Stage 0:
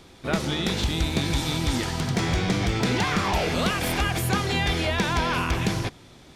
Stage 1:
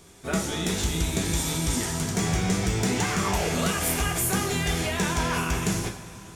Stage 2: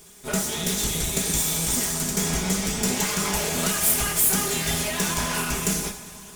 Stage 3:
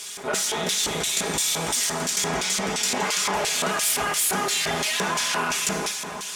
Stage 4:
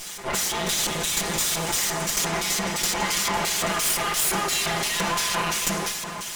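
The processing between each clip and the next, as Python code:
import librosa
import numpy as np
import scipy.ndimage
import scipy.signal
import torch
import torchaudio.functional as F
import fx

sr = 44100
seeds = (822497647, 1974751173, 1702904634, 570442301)

y1 = fx.high_shelf_res(x, sr, hz=5500.0, db=8.5, q=1.5)
y1 = fx.rev_double_slope(y1, sr, seeds[0], early_s=0.37, late_s=3.9, knee_db=-19, drr_db=0.5)
y1 = y1 * librosa.db_to_amplitude(-4.5)
y2 = fx.lower_of_two(y1, sr, delay_ms=4.8)
y2 = fx.high_shelf(y2, sr, hz=5700.0, db=11.5)
y3 = fx.filter_lfo_bandpass(y2, sr, shape='square', hz=2.9, low_hz=860.0, high_hz=3900.0, q=0.79)
y3 = fx.env_flatten(y3, sr, amount_pct=50)
y3 = y3 * librosa.db_to_amplitude(4.0)
y4 = fx.lower_of_two(y3, sr, delay_ms=5.8)
y4 = y4 * librosa.db_to_amplitude(1.5)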